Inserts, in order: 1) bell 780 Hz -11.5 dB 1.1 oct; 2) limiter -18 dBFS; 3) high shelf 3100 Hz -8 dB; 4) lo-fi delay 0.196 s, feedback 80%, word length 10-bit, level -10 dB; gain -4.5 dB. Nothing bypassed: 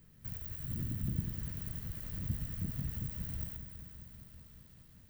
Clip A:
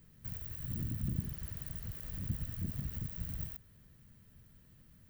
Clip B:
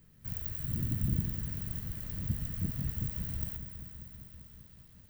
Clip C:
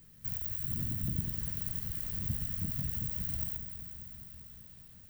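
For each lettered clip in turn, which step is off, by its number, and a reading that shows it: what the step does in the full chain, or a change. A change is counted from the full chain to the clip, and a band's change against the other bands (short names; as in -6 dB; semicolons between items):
4, momentary loudness spread change -11 LU; 2, mean gain reduction 2.0 dB; 3, 8 kHz band +7.0 dB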